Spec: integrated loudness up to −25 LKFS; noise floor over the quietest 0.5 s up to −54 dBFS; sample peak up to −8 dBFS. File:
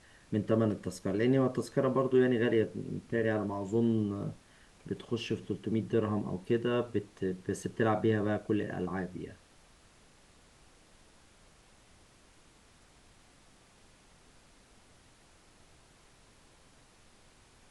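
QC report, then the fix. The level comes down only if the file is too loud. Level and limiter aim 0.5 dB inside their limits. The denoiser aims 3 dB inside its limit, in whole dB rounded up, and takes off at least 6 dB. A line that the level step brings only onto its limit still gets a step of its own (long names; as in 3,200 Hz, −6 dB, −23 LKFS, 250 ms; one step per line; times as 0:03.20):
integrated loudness −32.0 LKFS: in spec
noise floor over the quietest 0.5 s −61 dBFS: in spec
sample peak −15.0 dBFS: in spec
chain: no processing needed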